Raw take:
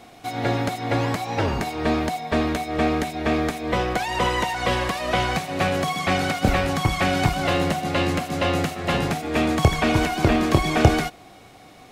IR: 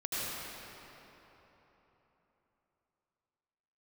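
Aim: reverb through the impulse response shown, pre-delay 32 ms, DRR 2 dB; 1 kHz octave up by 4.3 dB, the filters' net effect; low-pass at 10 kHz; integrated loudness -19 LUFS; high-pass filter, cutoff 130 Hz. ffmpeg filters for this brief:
-filter_complex "[0:a]highpass=130,lowpass=10000,equalizer=f=1000:t=o:g=6,asplit=2[s0][s1];[1:a]atrim=start_sample=2205,adelay=32[s2];[s1][s2]afir=irnorm=-1:irlink=0,volume=0.376[s3];[s0][s3]amix=inputs=2:normalize=0"

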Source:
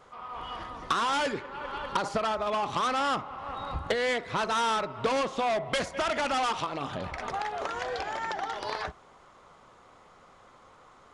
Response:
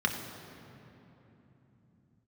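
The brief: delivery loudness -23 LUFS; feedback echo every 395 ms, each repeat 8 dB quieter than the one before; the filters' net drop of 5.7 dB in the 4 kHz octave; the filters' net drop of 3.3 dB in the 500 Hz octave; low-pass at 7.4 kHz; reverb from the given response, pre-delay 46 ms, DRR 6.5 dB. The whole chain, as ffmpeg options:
-filter_complex "[0:a]lowpass=7400,equalizer=f=500:t=o:g=-4,equalizer=f=4000:t=o:g=-7.5,aecho=1:1:395|790|1185|1580|1975:0.398|0.159|0.0637|0.0255|0.0102,asplit=2[s0][s1];[1:a]atrim=start_sample=2205,adelay=46[s2];[s1][s2]afir=irnorm=-1:irlink=0,volume=0.158[s3];[s0][s3]amix=inputs=2:normalize=0,volume=2.51"

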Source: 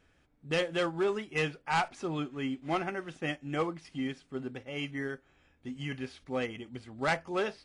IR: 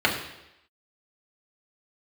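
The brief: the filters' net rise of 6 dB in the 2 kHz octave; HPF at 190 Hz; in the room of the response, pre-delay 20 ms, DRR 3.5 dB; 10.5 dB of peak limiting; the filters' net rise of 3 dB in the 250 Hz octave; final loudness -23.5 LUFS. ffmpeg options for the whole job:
-filter_complex "[0:a]highpass=190,equalizer=f=250:t=o:g=5,equalizer=f=2000:t=o:g=7.5,alimiter=level_in=1.06:limit=0.0631:level=0:latency=1,volume=0.944,asplit=2[s0][s1];[1:a]atrim=start_sample=2205,adelay=20[s2];[s1][s2]afir=irnorm=-1:irlink=0,volume=0.0944[s3];[s0][s3]amix=inputs=2:normalize=0,volume=3.35"

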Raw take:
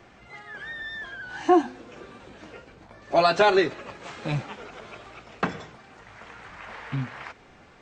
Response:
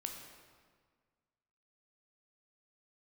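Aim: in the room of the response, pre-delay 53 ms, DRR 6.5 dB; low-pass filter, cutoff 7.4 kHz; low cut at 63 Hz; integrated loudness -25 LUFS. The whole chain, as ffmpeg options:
-filter_complex "[0:a]highpass=63,lowpass=7400,asplit=2[s0][s1];[1:a]atrim=start_sample=2205,adelay=53[s2];[s1][s2]afir=irnorm=-1:irlink=0,volume=0.562[s3];[s0][s3]amix=inputs=2:normalize=0"

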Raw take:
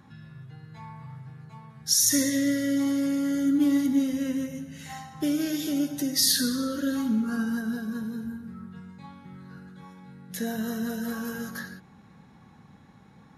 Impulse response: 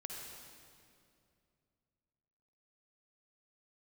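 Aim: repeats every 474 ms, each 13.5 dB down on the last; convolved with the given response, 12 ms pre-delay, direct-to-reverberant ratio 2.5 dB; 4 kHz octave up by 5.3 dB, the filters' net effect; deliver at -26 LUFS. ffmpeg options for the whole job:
-filter_complex "[0:a]equalizer=f=4000:t=o:g=7,aecho=1:1:474|948:0.211|0.0444,asplit=2[s0][s1];[1:a]atrim=start_sample=2205,adelay=12[s2];[s1][s2]afir=irnorm=-1:irlink=0,volume=0.944[s3];[s0][s3]amix=inputs=2:normalize=0,volume=0.708"

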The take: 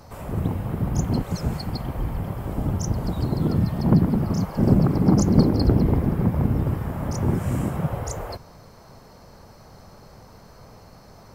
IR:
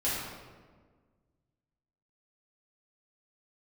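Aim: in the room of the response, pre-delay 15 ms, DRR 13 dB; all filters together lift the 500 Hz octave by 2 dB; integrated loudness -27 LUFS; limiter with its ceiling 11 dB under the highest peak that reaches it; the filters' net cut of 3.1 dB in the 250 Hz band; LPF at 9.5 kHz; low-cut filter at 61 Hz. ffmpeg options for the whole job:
-filter_complex "[0:a]highpass=61,lowpass=9500,equalizer=f=250:t=o:g=-5.5,equalizer=f=500:t=o:g=4.5,alimiter=limit=0.158:level=0:latency=1,asplit=2[s0][s1];[1:a]atrim=start_sample=2205,adelay=15[s2];[s1][s2]afir=irnorm=-1:irlink=0,volume=0.0841[s3];[s0][s3]amix=inputs=2:normalize=0"

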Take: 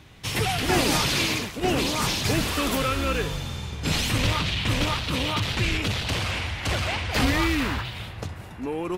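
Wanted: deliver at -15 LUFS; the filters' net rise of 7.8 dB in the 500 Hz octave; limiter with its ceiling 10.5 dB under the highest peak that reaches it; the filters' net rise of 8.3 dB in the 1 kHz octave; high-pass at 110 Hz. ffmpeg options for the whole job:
-af "highpass=110,equalizer=f=500:t=o:g=7.5,equalizer=f=1000:t=o:g=8.5,volume=2.99,alimiter=limit=0.531:level=0:latency=1"

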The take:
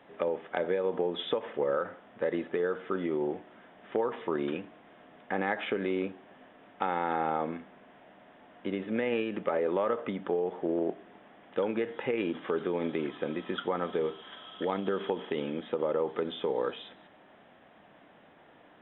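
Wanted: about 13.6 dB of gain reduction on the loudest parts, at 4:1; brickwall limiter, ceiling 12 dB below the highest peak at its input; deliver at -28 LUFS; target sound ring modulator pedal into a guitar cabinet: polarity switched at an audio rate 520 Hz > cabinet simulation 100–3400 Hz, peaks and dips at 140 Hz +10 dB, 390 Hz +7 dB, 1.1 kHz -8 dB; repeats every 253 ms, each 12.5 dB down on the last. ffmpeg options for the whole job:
-af "acompressor=threshold=0.00794:ratio=4,alimiter=level_in=3.98:limit=0.0631:level=0:latency=1,volume=0.251,aecho=1:1:253|506|759:0.237|0.0569|0.0137,aeval=exprs='val(0)*sgn(sin(2*PI*520*n/s))':c=same,highpass=100,equalizer=f=140:t=q:w=4:g=10,equalizer=f=390:t=q:w=4:g=7,equalizer=f=1100:t=q:w=4:g=-8,lowpass=f=3400:w=0.5412,lowpass=f=3400:w=1.3066,volume=10.6"

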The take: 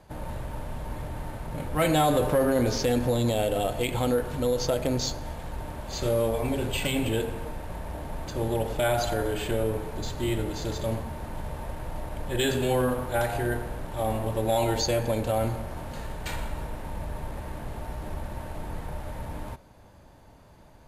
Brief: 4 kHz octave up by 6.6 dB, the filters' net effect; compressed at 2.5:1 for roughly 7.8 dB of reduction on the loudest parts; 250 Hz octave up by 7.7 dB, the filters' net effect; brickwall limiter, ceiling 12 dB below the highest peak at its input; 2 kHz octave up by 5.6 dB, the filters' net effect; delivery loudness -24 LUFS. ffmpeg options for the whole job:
-af "equalizer=f=250:t=o:g=9,equalizer=f=2000:t=o:g=5.5,equalizer=f=4000:t=o:g=6.5,acompressor=threshold=0.0447:ratio=2.5,volume=3.55,alimiter=limit=0.178:level=0:latency=1"

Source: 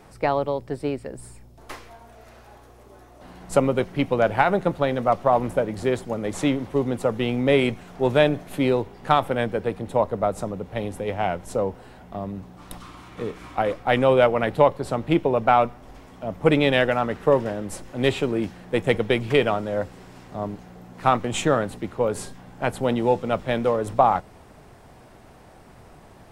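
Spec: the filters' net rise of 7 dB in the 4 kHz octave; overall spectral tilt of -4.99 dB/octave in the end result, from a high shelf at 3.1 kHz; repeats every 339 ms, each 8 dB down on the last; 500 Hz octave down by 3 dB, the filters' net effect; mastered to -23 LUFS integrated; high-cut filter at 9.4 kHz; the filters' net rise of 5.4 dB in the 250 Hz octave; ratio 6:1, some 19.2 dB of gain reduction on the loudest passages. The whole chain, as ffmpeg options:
-af "lowpass=9400,equalizer=f=250:t=o:g=8,equalizer=f=500:t=o:g=-6,highshelf=f=3100:g=5.5,equalizer=f=4000:t=o:g=5.5,acompressor=threshold=0.02:ratio=6,aecho=1:1:339|678|1017|1356|1695:0.398|0.159|0.0637|0.0255|0.0102,volume=5.31"

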